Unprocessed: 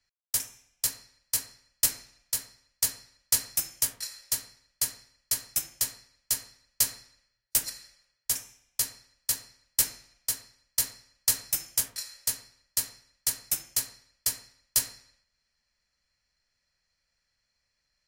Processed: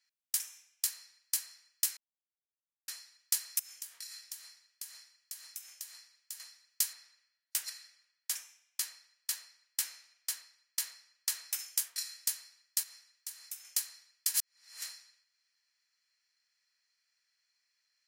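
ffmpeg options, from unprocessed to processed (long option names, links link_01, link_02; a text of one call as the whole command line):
ffmpeg -i in.wav -filter_complex "[0:a]asettb=1/sr,asplit=3[link_01][link_02][link_03];[link_01]atrim=end=3.594[link_04];[link_02]atrim=start=3.59:end=6.4,asetpts=PTS-STARTPTS,afade=type=in:duration=0.004:curve=qsin,afade=type=out:start_time=2.806:duration=0.004:curve=qsin,acompressor=threshold=-41dB:ratio=6:attack=3.2:release=140:knee=1:detection=peak[link_05];[link_03]atrim=start=6.396[link_06];[link_04][link_05]acrossfade=duration=0.004:curve1=hsin:curve2=qsin[link_07];[link_07][link_06]acrossfade=duration=0.004:curve1=qsin:curve2=hsin,asettb=1/sr,asplit=3[link_08][link_09][link_10];[link_08]atrim=end=6.934[link_11];[link_09]atrim=start=6.93:end=11.59,asetpts=PTS-STARTPTS,afade=type=in:duration=0.004:curve=qsin,afade=type=out:start_time=4.656:duration=0.004:curve=qsin,highshelf=frequency=4900:gain=-7.5[link_12];[link_10]atrim=start=11.586[link_13];[link_11][link_12]acrossfade=duration=0.004:curve1=hsin:curve2=qsin[link_14];[link_14][link_13]acrossfade=duration=0.004:curve1=qsin:curve2=hsin,asettb=1/sr,asplit=3[link_15][link_16][link_17];[link_15]atrim=end=12.834[link_18];[link_16]atrim=start=12.83:end=13.65,asetpts=PTS-STARTPTS,afade=type=in:duration=0.004:curve=qsin,afade=type=out:start_time=0.816:duration=0.004:curve=qsin,acompressor=threshold=-46dB:ratio=2.5:attack=3.2:release=140:knee=1:detection=peak[link_19];[link_17]atrim=start=13.646[link_20];[link_18][link_19]acrossfade=duration=0.004:curve1=hsin:curve2=qsin[link_21];[link_21][link_20]acrossfade=duration=0.004:curve1=qsin:curve2=hsin,asplit=5[link_22][link_23][link_24][link_25][link_26];[link_22]atrim=end=1.97,asetpts=PTS-STARTPTS,afade=type=out:start_time=1.966:duration=0.004:curve=hsin[link_27];[link_23]atrim=start=1.97:end=2.88,asetpts=PTS-STARTPTS,volume=0[link_28];[link_24]atrim=start=2.88:end=14.342,asetpts=PTS-STARTPTS,afade=type=in:duration=0.004:curve=hsin[link_29];[link_25]atrim=start=14.338:end=14.822,asetpts=PTS-STARTPTS,areverse[link_30];[link_26]atrim=start=14.818[link_31];[link_27][link_28][link_29]concat=n=3:v=0:a=1[link_32];[link_32][link_30]acrossfade=duration=0.004:curve1=hsin:curve2=hsin[link_33];[link_33][link_31]acrossfade=duration=0.004:curve1=hsin:curve2=hsin,highpass=1400,acompressor=threshold=-30dB:ratio=2.5" out.wav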